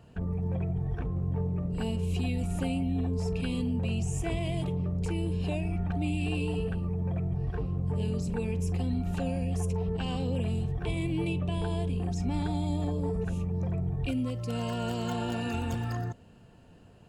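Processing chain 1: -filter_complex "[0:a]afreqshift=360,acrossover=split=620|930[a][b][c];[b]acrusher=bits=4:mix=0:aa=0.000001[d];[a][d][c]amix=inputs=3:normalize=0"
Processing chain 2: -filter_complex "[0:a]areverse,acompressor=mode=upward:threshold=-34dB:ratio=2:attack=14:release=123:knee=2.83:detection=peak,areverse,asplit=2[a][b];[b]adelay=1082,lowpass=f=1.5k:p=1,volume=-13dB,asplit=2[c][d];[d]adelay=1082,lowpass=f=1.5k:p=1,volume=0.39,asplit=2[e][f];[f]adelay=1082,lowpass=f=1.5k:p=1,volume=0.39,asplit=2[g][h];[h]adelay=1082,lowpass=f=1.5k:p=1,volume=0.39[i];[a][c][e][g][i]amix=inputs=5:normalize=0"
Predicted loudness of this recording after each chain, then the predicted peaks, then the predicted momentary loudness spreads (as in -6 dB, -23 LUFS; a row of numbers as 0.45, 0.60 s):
-33.0, -31.0 LUFS; -17.0, -17.5 dBFS; 2, 3 LU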